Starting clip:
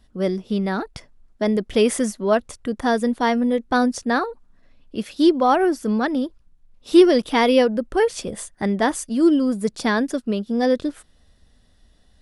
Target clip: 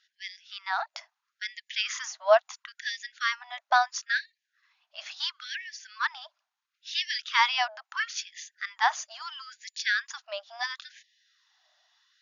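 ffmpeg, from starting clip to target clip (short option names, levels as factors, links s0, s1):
-af "afftfilt=real='re*between(b*sr/4096,460,7000)':imag='im*between(b*sr/4096,460,7000)':win_size=4096:overlap=0.75,afftfilt=real='re*gte(b*sr/1024,580*pow(1700/580,0.5+0.5*sin(2*PI*0.74*pts/sr)))':imag='im*gte(b*sr/1024,580*pow(1700/580,0.5+0.5*sin(2*PI*0.74*pts/sr)))':win_size=1024:overlap=0.75"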